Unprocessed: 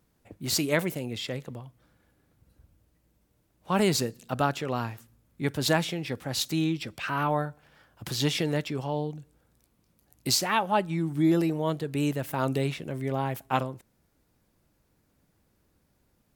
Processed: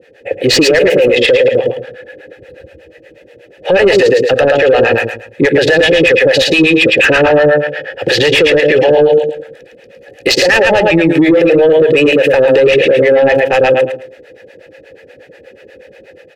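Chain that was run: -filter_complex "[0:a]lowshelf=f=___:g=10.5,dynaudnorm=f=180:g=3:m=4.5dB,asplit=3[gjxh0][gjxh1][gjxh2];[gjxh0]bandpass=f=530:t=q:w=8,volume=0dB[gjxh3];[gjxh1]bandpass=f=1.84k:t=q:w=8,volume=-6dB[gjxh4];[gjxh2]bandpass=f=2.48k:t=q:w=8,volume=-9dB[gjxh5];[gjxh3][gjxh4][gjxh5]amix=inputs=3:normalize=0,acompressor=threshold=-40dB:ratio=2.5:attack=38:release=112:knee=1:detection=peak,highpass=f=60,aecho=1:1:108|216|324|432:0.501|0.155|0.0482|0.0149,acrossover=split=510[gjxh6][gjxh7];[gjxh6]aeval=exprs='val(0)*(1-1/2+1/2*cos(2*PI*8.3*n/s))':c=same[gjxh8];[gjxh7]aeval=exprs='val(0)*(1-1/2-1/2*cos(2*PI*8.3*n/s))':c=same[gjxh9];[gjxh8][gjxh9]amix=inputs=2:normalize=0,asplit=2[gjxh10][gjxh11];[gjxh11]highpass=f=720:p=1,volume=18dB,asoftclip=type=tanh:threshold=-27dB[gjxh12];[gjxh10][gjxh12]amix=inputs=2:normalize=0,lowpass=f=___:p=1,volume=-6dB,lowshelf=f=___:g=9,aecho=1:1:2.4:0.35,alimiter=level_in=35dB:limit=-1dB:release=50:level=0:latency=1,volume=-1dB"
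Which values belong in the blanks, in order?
94, 4.8k, 310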